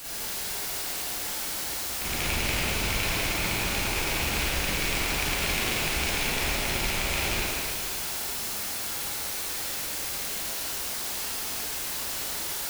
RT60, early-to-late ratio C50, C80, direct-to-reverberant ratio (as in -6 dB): 2.2 s, -5.5 dB, -3.5 dB, -9.5 dB